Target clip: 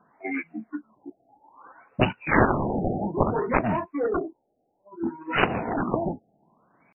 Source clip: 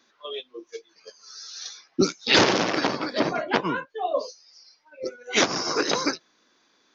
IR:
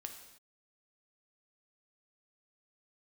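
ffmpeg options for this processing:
-af "aeval=exprs='0.501*(cos(1*acos(clip(val(0)/0.501,-1,1)))-cos(1*PI/2))+0.2*(cos(7*acos(clip(val(0)/0.501,-1,1)))-cos(7*PI/2))':c=same,asetrate=28595,aresample=44100,atempo=1.54221,afftfilt=real='re*lt(b*sr/1024,810*pow(3000/810,0.5+0.5*sin(2*PI*0.6*pts/sr)))':imag='im*lt(b*sr/1024,810*pow(3000/810,0.5+0.5*sin(2*PI*0.6*pts/sr)))':win_size=1024:overlap=0.75"

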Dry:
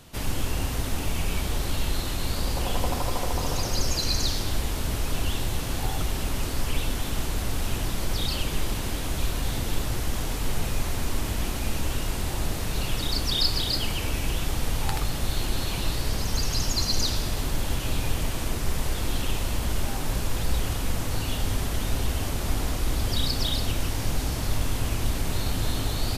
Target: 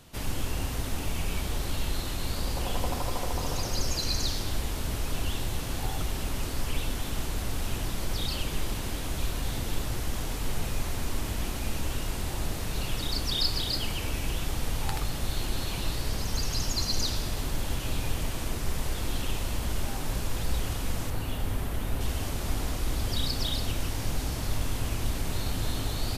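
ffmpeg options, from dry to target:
-filter_complex "[0:a]asettb=1/sr,asplit=3[s0][s1][s2];[s0]atrim=end=21.104[s3];[s1]atrim=start=21.1:end=22.01,asetpts=PTS-STARTPTS,afade=t=in:d=0.004:c=qsin,afade=t=out:st=0.906:d=0.004:c=qsin,equalizer=f=5700:w=0.71:g=-8[s4];[s2]atrim=start=22.006[s5];[s3][s4]acrossfade=d=0.004:c1=hsin:c2=qsin[s6];[s6][s5]acrossfade=d=0.004:c1=qsin:c2=hsin,volume=0.668"

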